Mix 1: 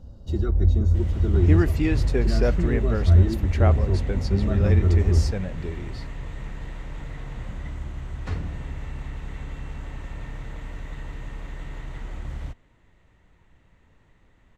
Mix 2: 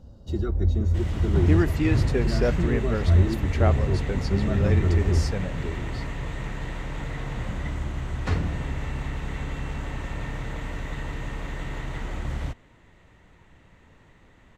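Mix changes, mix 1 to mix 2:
second sound +7.0 dB; master: add bass shelf 69 Hz -7.5 dB

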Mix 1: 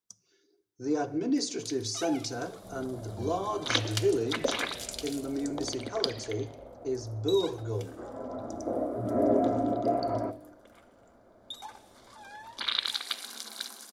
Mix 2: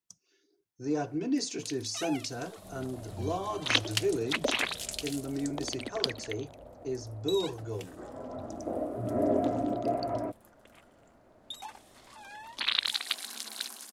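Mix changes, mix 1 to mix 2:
first sound +4.0 dB; reverb: off

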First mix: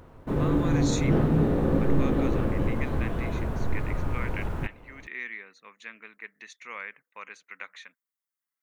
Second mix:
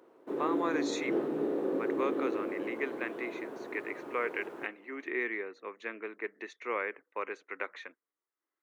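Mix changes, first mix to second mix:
speech: remove pre-emphasis filter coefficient 0.9; master: add ladder high-pass 310 Hz, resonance 55%

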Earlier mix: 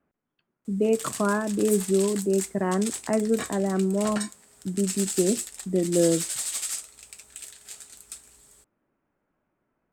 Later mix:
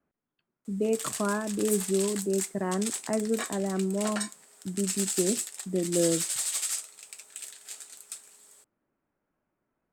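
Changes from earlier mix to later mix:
speech -4.5 dB; background: add high-pass 380 Hz 12 dB/octave

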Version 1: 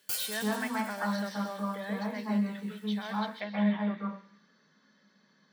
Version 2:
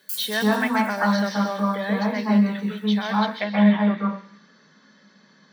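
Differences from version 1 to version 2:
speech +11.0 dB; background: add pre-emphasis filter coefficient 0.8

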